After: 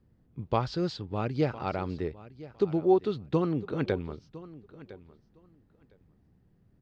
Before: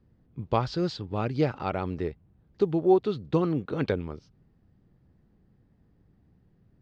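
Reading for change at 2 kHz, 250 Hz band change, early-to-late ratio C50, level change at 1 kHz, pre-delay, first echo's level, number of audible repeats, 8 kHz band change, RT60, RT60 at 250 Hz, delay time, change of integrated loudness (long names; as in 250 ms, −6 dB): −2.0 dB, −2.0 dB, no reverb audible, −2.0 dB, no reverb audible, −18.0 dB, 2, can't be measured, no reverb audible, no reverb audible, 1,008 ms, −2.0 dB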